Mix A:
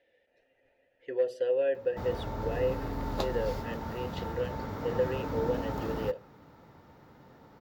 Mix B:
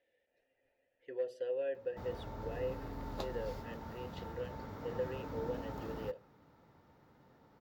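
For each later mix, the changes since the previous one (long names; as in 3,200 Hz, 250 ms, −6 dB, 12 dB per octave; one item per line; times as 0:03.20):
speech −9.0 dB
background −9.0 dB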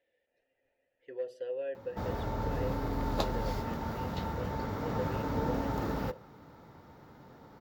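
background +10.5 dB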